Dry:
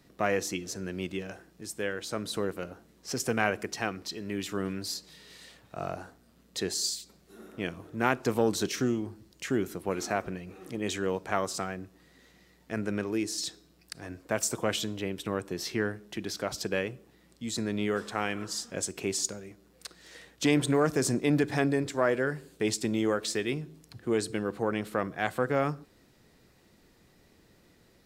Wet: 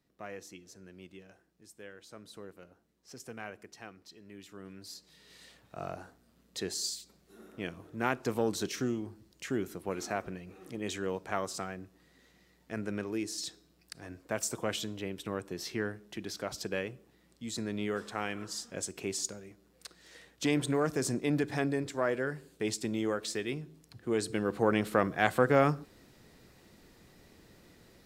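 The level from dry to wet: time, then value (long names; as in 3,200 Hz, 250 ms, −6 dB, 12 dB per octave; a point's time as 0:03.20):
0:04.58 −16 dB
0:05.41 −4.5 dB
0:23.99 −4.5 dB
0:24.70 +3 dB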